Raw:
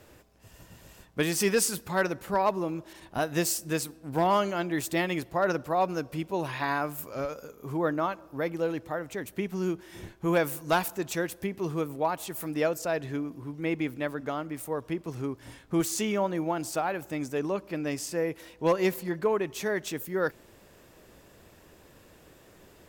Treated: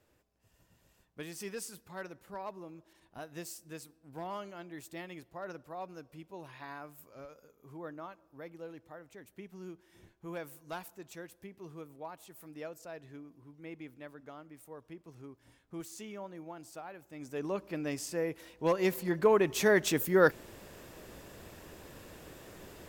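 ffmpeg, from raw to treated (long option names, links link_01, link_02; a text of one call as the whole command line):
ffmpeg -i in.wav -af "volume=4.5dB,afade=type=in:start_time=17.12:duration=0.43:silence=0.251189,afade=type=in:start_time=18.8:duration=0.9:silence=0.354813" out.wav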